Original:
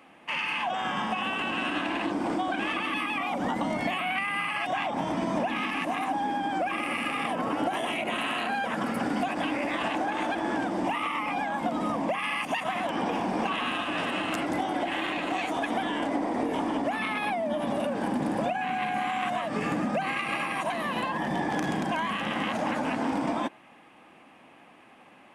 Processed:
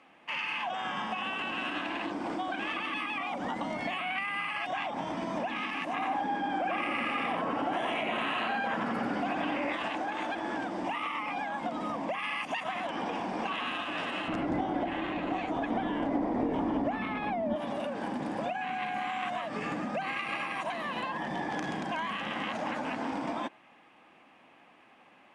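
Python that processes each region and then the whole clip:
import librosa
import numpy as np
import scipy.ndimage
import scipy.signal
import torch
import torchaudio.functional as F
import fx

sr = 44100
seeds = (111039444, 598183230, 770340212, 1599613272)

y = fx.chain(x, sr, fx.high_shelf(hz=3500.0, db=-8.5),
    fx.echo_single(ms=89, db=-3.0),
    fx.env_flatten(amount_pct=50), at=(5.93, 9.73))
y = fx.chain(y, sr, fx.tilt_eq(slope=-3.5),
    fx.resample_bad(factor=2, down='none', up='filtered'), at=(14.28, 17.56))
y = scipy.signal.sosfilt(scipy.signal.butter(2, 6800.0, 'lowpass', fs=sr, output='sos'), y)
y = fx.low_shelf(y, sr, hz=460.0, db=-4.5)
y = y * librosa.db_to_amplitude(-3.5)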